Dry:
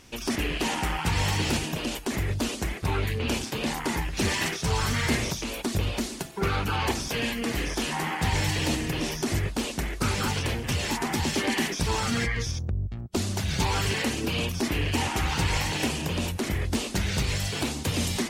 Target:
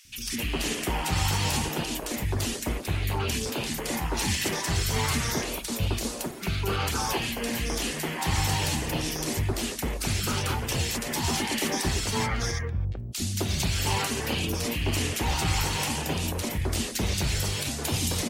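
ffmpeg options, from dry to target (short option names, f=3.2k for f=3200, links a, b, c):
-filter_complex "[0:a]highshelf=f=8.6k:g=7.5,acrossover=split=260|1800[a][b][c];[a]adelay=50[d];[b]adelay=260[e];[d][e][c]amix=inputs=3:normalize=0"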